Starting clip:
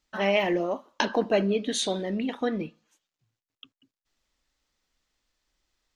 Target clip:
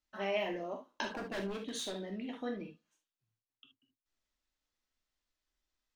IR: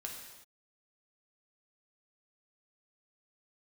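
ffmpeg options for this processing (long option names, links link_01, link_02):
-filter_complex "[0:a]asplit=3[link_01][link_02][link_03];[link_01]afade=type=out:start_time=1.03:duration=0.02[link_04];[link_02]aeval=exprs='0.0891*(abs(mod(val(0)/0.0891+3,4)-2)-1)':channel_layout=same,afade=type=in:start_time=1.03:duration=0.02,afade=type=out:start_time=2.08:duration=0.02[link_05];[link_03]afade=type=in:start_time=2.08:duration=0.02[link_06];[link_04][link_05][link_06]amix=inputs=3:normalize=0[link_07];[1:a]atrim=start_sample=2205,atrim=end_sample=3528[link_08];[link_07][link_08]afir=irnorm=-1:irlink=0,volume=-8.5dB"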